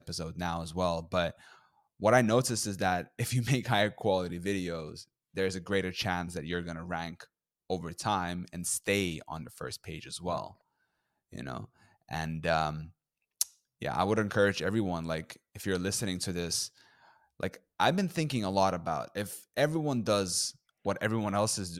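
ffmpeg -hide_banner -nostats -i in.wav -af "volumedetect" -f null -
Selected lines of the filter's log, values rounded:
mean_volume: -32.5 dB
max_volume: -10.5 dB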